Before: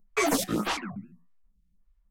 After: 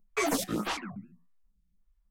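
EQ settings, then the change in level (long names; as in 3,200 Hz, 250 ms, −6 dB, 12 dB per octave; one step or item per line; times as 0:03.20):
no EQ move
−3.5 dB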